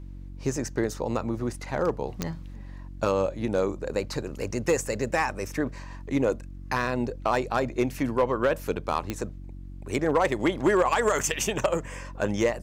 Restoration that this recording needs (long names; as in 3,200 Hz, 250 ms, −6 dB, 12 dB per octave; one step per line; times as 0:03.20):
clipped peaks rebuilt −14.5 dBFS
click removal
hum removal 46.4 Hz, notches 7